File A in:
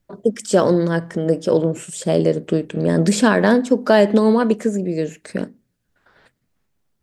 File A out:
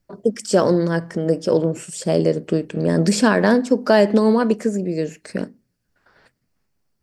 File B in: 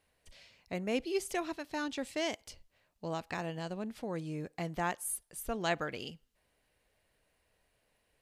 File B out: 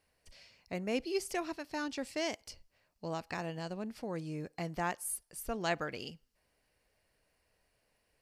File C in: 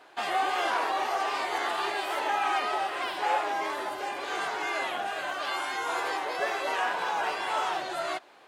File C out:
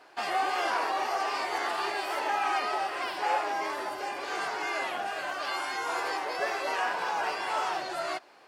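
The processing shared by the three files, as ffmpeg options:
-af "superequalizer=13b=0.708:14b=1.58,volume=0.891"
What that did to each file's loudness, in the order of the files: -1.0 LU, -1.0 LU, -1.0 LU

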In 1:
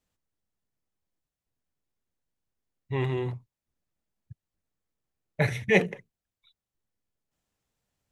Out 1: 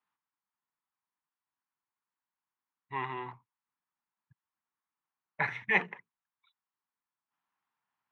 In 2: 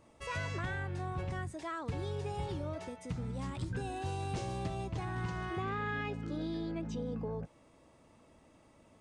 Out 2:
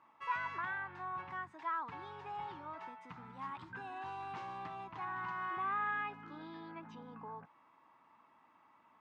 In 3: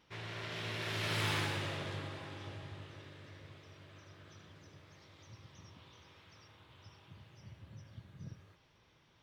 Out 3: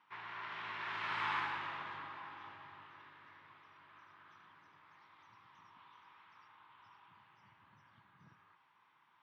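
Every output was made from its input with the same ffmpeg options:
-af "highpass=210,lowpass=2100,lowshelf=f=730:t=q:w=3:g=-9.5"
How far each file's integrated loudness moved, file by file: -5.0 LU, -3.5 LU, -2.0 LU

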